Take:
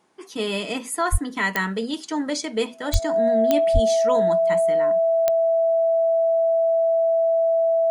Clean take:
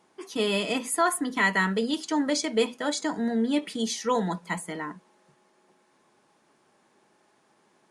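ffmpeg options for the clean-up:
-filter_complex "[0:a]adeclick=t=4,bandreject=f=660:w=30,asplit=3[a][b][c];[a]afade=t=out:st=1.11:d=0.02[d];[b]highpass=f=140:w=0.5412,highpass=f=140:w=1.3066,afade=t=in:st=1.11:d=0.02,afade=t=out:st=1.23:d=0.02[e];[c]afade=t=in:st=1.23:d=0.02[f];[d][e][f]amix=inputs=3:normalize=0,asplit=3[g][h][i];[g]afade=t=out:st=2.92:d=0.02[j];[h]highpass=f=140:w=0.5412,highpass=f=140:w=1.3066,afade=t=in:st=2.92:d=0.02,afade=t=out:st=3.04:d=0.02[k];[i]afade=t=in:st=3.04:d=0.02[l];[j][k][l]amix=inputs=3:normalize=0,asplit=3[m][n][o];[m]afade=t=out:st=3.73:d=0.02[p];[n]highpass=f=140:w=0.5412,highpass=f=140:w=1.3066,afade=t=in:st=3.73:d=0.02,afade=t=out:st=3.85:d=0.02[q];[o]afade=t=in:st=3.85:d=0.02[r];[p][q][r]amix=inputs=3:normalize=0"

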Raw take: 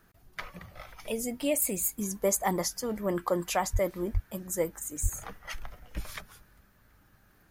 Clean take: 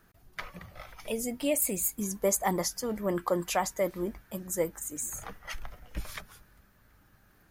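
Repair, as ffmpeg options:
-filter_complex "[0:a]asplit=3[a][b][c];[a]afade=t=out:st=3.72:d=0.02[d];[b]highpass=f=140:w=0.5412,highpass=f=140:w=1.3066,afade=t=in:st=3.72:d=0.02,afade=t=out:st=3.84:d=0.02[e];[c]afade=t=in:st=3.84:d=0.02[f];[d][e][f]amix=inputs=3:normalize=0,asplit=3[g][h][i];[g]afade=t=out:st=4.13:d=0.02[j];[h]highpass=f=140:w=0.5412,highpass=f=140:w=1.3066,afade=t=in:st=4.13:d=0.02,afade=t=out:st=4.25:d=0.02[k];[i]afade=t=in:st=4.25:d=0.02[l];[j][k][l]amix=inputs=3:normalize=0,asplit=3[m][n][o];[m]afade=t=out:st=5.02:d=0.02[p];[n]highpass=f=140:w=0.5412,highpass=f=140:w=1.3066,afade=t=in:st=5.02:d=0.02,afade=t=out:st=5.14:d=0.02[q];[o]afade=t=in:st=5.14:d=0.02[r];[p][q][r]amix=inputs=3:normalize=0"

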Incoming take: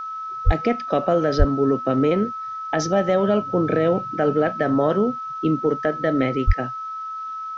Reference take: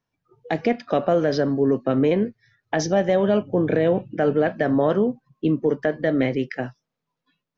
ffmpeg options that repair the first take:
-filter_complex "[0:a]bandreject=f=1.3k:w=30,asplit=3[a][b][c];[a]afade=t=out:st=0.45:d=0.02[d];[b]highpass=f=140:w=0.5412,highpass=f=140:w=1.3066,afade=t=in:st=0.45:d=0.02,afade=t=out:st=0.57:d=0.02[e];[c]afade=t=in:st=0.57:d=0.02[f];[d][e][f]amix=inputs=3:normalize=0,asplit=3[g][h][i];[g]afade=t=out:st=1.38:d=0.02[j];[h]highpass=f=140:w=0.5412,highpass=f=140:w=1.3066,afade=t=in:st=1.38:d=0.02,afade=t=out:st=1.5:d=0.02[k];[i]afade=t=in:st=1.5:d=0.02[l];[j][k][l]amix=inputs=3:normalize=0,asplit=3[m][n][o];[m]afade=t=out:st=6.46:d=0.02[p];[n]highpass=f=140:w=0.5412,highpass=f=140:w=1.3066,afade=t=in:st=6.46:d=0.02,afade=t=out:st=6.58:d=0.02[q];[o]afade=t=in:st=6.58:d=0.02[r];[p][q][r]amix=inputs=3:normalize=0,agate=range=-21dB:threshold=-23dB"

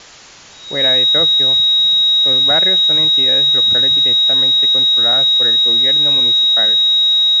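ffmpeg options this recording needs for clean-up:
-af "bandreject=f=3.8k:w=30,afwtdn=0.016"

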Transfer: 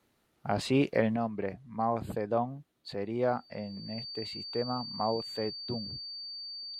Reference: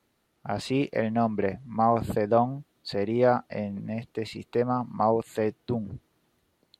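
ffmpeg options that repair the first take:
-af "bandreject=f=4.6k:w=30,asetnsamples=n=441:p=0,asendcmd='1.16 volume volume 7.5dB',volume=0dB"

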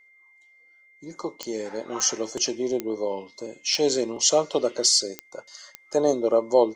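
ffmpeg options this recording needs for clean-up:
-af "adeclick=t=4,bandreject=f=2.1k:w=30"

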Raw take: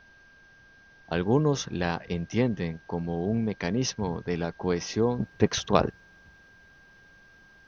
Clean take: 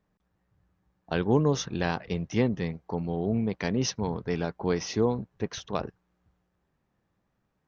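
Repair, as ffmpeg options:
-af "bandreject=f=1.6k:w=30,agate=range=-21dB:threshold=-48dB,asetnsamples=n=441:p=0,asendcmd='5.2 volume volume -9dB',volume=0dB"

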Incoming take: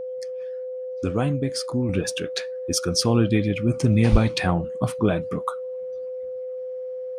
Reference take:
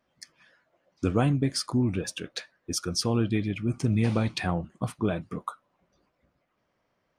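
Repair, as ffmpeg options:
-filter_complex "[0:a]bandreject=f=510:w=30,asplit=3[a][b][c];[a]afade=t=out:st=4.11:d=0.02[d];[b]highpass=f=140:w=0.5412,highpass=f=140:w=1.3066,afade=t=in:st=4.11:d=0.02,afade=t=out:st=4.23:d=0.02[e];[c]afade=t=in:st=4.23:d=0.02[f];[d][e][f]amix=inputs=3:normalize=0,asetnsamples=n=441:p=0,asendcmd='1.89 volume volume -6dB',volume=0dB"

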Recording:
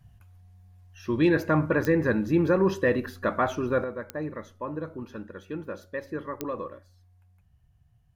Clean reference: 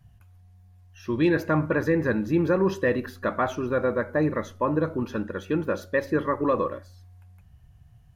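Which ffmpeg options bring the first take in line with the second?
-af "adeclick=t=4,asetnsamples=n=441:p=0,asendcmd='3.84 volume volume 9.5dB',volume=0dB"

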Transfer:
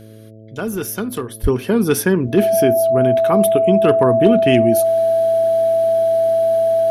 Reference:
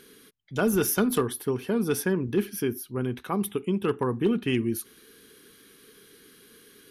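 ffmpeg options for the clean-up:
-filter_complex "[0:a]bandreject=f=109.4:t=h:w=4,bandreject=f=218.8:t=h:w=4,bandreject=f=328.2:t=h:w=4,bandreject=f=437.6:t=h:w=4,bandreject=f=547:t=h:w=4,bandreject=f=656.4:t=h:w=4,bandreject=f=660:w=30,asplit=3[a][b][c];[a]afade=t=out:st=1.42:d=0.02[d];[b]highpass=f=140:w=0.5412,highpass=f=140:w=1.3066,afade=t=in:st=1.42:d=0.02,afade=t=out:st=1.54:d=0.02[e];[c]afade=t=in:st=1.54:d=0.02[f];[d][e][f]amix=inputs=3:normalize=0,asetnsamples=n=441:p=0,asendcmd='1.44 volume volume -10dB',volume=0dB"

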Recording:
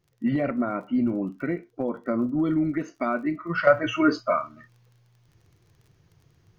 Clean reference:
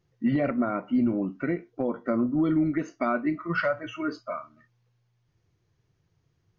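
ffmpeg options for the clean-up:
-af "adeclick=t=4,asetnsamples=n=441:p=0,asendcmd='3.67 volume volume -10dB',volume=0dB"

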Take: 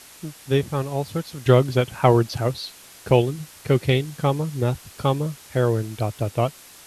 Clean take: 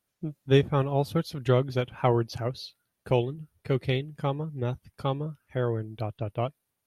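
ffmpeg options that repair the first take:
-af "afwtdn=0.0063,asetnsamples=n=441:p=0,asendcmd='1.46 volume volume -7.5dB',volume=0dB"

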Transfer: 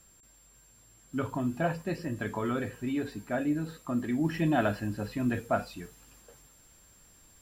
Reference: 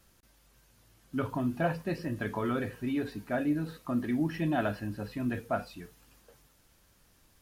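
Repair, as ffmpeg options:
-af "bandreject=f=7.4k:w=30,asetnsamples=n=441:p=0,asendcmd='4.24 volume volume -3dB',volume=0dB"

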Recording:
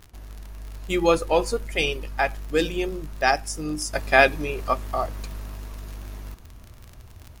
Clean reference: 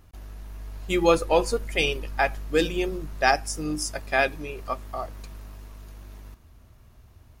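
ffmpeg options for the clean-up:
-af "adeclick=t=4,agate=range=-21dB:threshold=-37dB,asetnsamples=n=441:p=0,asendcmd='3.93 volume volume -6.5dB',volume=0dB"

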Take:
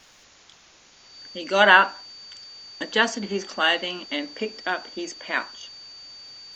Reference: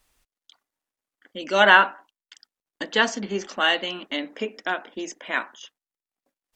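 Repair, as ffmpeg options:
-af "bandreject=f=4.6k:w=30,afwtdn=0.0035,asetnsamples=n=441:p=0,asendcmd='6.19 volume volume -5.5dB',volume=0dB"

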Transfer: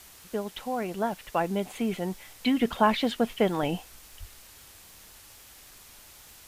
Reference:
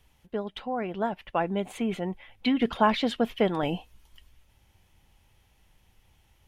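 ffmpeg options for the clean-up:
-filter_complex "[0:a]adeclick=t=4,asplit=3[a][b][c];[a]afade=t=out:st=4.19:d=0.02[d];[b]highpass=f=140:w=0.5412,highpass=f=140:w=1.3066,afade=t=in:st=4.19:d=0.02,afade=t=out:st=4.31:d=0.02[e];[c]afade=t=in:st=4.31:d=0.02[f];[d][e][f]amix=inputs=3:normalize=0,afwtdn=0.0032"

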